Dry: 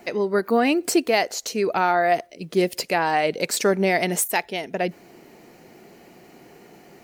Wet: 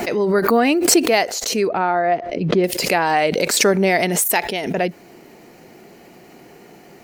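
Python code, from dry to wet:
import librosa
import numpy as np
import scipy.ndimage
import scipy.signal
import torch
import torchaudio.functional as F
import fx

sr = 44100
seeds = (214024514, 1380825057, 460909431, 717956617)

y = fx.spacing_loss(x, sr, db_at_10k=31, at=(1.68, 2.64))
y = fx.pre_swell(y, sr, db_per_s=46.0)
y = y * librosa.db_to_amplitude(3.5)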